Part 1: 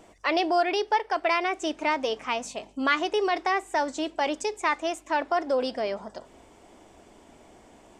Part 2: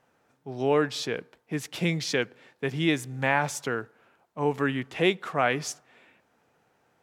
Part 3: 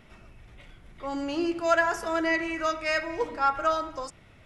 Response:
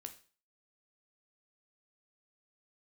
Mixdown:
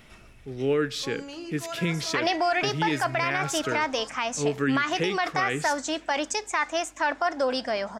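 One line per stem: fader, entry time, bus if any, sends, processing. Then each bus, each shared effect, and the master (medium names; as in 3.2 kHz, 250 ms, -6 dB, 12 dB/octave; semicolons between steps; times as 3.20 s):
+2.5 dB, 1.90 s, no send, fifteen-band graphic EQ 400 Hz -8 dB, 1.6 kHz +6 dB, 6.3 kHz +6 dB
-1.0 dB, 0.00 s, send -7.5 dB, high-order bell 810 Hz -12.5 dB 1 oct
+0.5 dB, 0.00 s, send -16.5 dB, treble shelf 3 kHz +10 dB; compression 3:1, threshold -27 dBFS, peak gain reduction 9 dB; auto duck -11 dB, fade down 1.10 s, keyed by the second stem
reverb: on, RT60 0.40 s, pre-delay 11 ms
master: peak limiter -15 dBFS, peak gain reduction 10.5 dB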